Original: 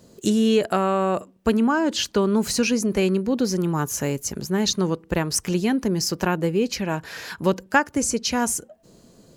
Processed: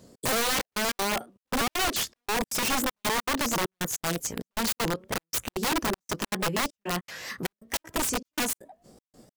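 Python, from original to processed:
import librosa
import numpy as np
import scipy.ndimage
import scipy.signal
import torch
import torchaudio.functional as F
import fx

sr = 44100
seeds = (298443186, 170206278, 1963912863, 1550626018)

y = fx.pitch_ramps(x, sr, semitones=4.0, every_ms=323)
y = (np.mod(10.0 ** (19.5 / 20.0) * y + 1.0, 2.0) - 1.0) / 10.0 ** (19.5 / 20.0)
y = fx.step_gate(y, sr, bpm=197, pattern='xx.xxxxx..', floor_db=-60.0, edge_ms=4.5)
y = F.gain(torch.from_numpy(y), -1.5).numpy()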